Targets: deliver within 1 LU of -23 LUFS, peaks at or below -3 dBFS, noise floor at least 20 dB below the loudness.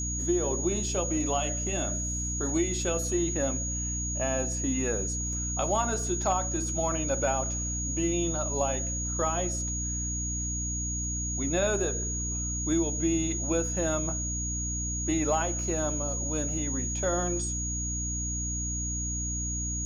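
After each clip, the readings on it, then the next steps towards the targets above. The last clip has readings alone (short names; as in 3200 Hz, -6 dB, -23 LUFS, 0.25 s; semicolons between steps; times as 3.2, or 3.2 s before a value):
hum 60 Hz; harmonics up to 300 Hz; hum level -32 dBFS; steady tone 6700 Hz; tone level -32 dBFS; loudness -29.0 LUFS; peak -14.5 dBFS; loudness target -23.0 LUFS
-> notches 60/120/180/240/300 Hz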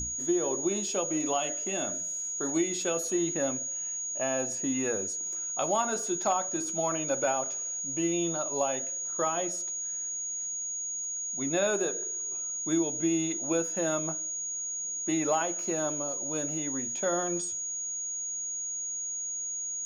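hum none; steady tone 6700 Hz; tone level -32 dBFS
-> notch 6700 Hz, Q 30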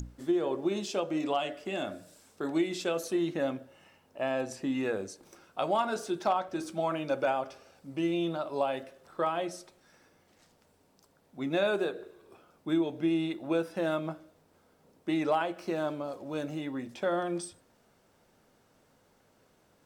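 steady tone none; loudness -32.0 LUFS; peak -17.5 dBFS; loudness target -23.0 LUFS
-> gain +9 dB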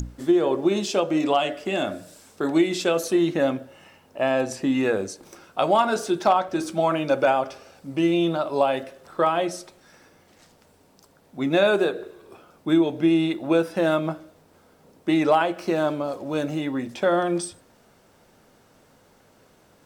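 loudness -23.0 LUFS; peak -8.5 dBFS; noise floor -58 dBFS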